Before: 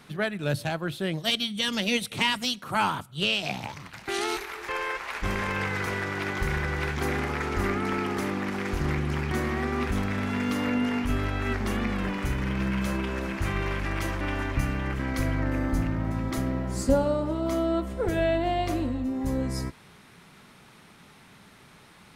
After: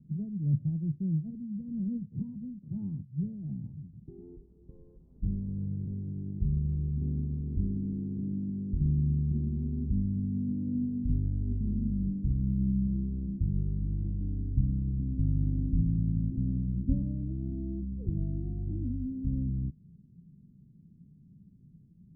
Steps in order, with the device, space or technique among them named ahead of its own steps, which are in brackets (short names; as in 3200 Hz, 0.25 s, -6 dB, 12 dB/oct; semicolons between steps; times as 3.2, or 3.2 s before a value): 12.25–12.71 bell 3900 Hz +10 dB 2.7 oct; the neighbour's flat through the wall (LPF 220 Hz 24 dB/oct; bell 160 Hz +5 dB 0.42 oct)